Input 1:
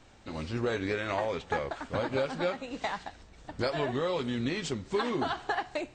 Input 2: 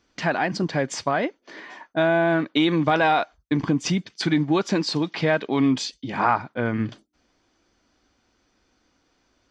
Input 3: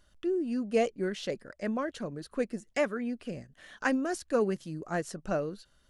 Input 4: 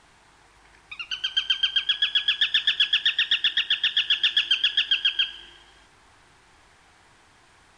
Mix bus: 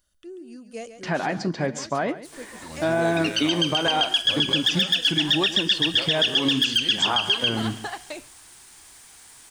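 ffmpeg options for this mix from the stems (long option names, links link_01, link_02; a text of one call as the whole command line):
ffmpeg -i stem1.wav -i stem2.wav -i stem3.wav -i stem4.wav -filter_complex "[0:a]adelay=2350,volume=-3.5dB[link_01];[1:a]highshelf=frequency=2200:gain=-11.5,flanger=delay=2.7:depth=8.5:regen=-80:speed=0.81:shape=triangular,adelay=850,volume=3dB,asplit=2[link_02][link_03];[link_03]volume=-15.5dB[link_04];[2:a]volume=-10.5dB,asplit=2[link_05][link_06];[link_06]volume=-10.5dB[link_07];[3:a]aemphasis=mode=production:type=50fm,adelay=2250,volume=-2dB[link_08];[link_04][link_07]amix=inputs=2:normalize=0,aecho=0:1:138:1[link_09];[link_01][link_02][link_05][link_08][link_09]amix=inputs=5:normalize=0,aemphasis=mode=production:type=75kf,alimiter=limit=-12dB:level=0:latency=1:release=116" out.wav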